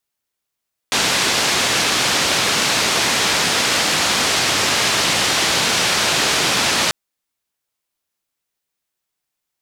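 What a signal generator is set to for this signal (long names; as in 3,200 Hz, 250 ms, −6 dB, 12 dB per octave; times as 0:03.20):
band-limited noise 100–5,400 Hz, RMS −17.5 dBFS 5.99 s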